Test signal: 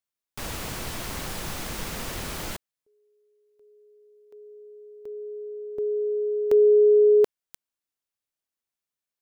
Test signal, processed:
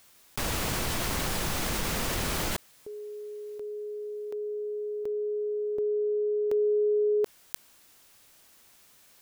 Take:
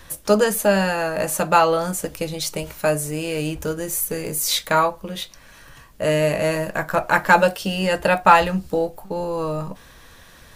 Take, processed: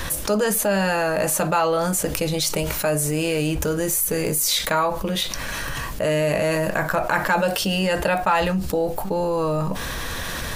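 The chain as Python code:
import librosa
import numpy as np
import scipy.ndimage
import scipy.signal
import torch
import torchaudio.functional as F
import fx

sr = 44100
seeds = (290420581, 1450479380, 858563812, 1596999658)

y = fx.env_flatten(x, sr, amount_pct=70)
y = y * librosa.db_to_amplitude(-8.5)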